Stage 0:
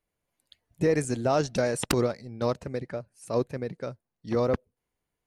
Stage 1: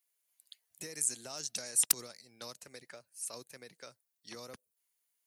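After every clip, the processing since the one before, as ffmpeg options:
ffmpeg -i in.wav -filter_complex "[0:a]acrossover=split=250|6200[link_01][link_02][link_03];[link_02]acompressor=threshold=-34dB:ratio=6[link_04];[link_01][link_04][link_03]amix=inputs=3:normalize=0,aderivative,volume=7.5dB" out.wav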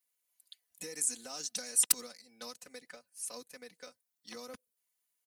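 ffmpeg -i in.wav -filter_complex "[0:a]aecho=1:1:4:0.92,asplit=2[link_01][link_02];[link_02]aeval=exprs='val(0)*gte(abs(val(0)),0.00596)':channel_layout=same,volume=-12dB[link_03];[link_01][link_03]amix=inputs=2:normalize=0,volume=-4dB" out.wav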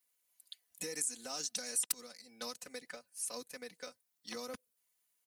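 ffmpeg -i in.wav -af "acompressor=threshold=-39dB:ratio=2.5,volume=3dB" out.wav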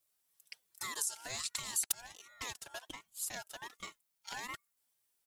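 ffmpeg -i in.wav -af "aeval=exprs='val(0)*sin(2*PI*1400*n/s+1400*0.2/1.3*sin(2*PI*1.3*n/s))':channel_layout=same,volume=3dB" out.wav

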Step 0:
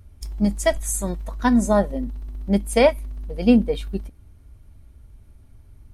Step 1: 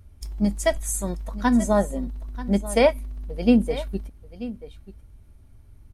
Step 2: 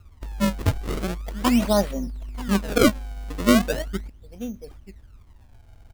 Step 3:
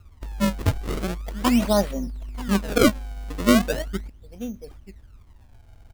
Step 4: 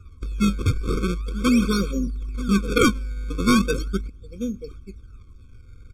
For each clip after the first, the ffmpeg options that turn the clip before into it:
ffmpeg -i in.wav -af "aecho=1:1:936:0.168,volume=-2dB" out.wav
ffmpeg -i in.wav -af "acrusher=samples=33:mix=1:aa=0.000001:lfo=1:lforange=52.8:lforate=0.39" out.wav
ffmpeg -i in.wav -af anull out.wav
ffmpeg -i in.wav -filter_complex "[0:a]lowpass=10000,acrossover=split=1400[link_01][link_02];[link_01]asoftclip=type=hard:threshold=-18.5dB[link_03];[link_03][link_02]amix=inputs=2:normalize=0,afftfilt=real='re*eq(mod(floor(b*sr/1024/530),2),0)':imag='im*eq(mod(floor(b*sr/1024/530),2),0)':win_size=1024:overlap=0.75,volume=4.5dB" out.wav

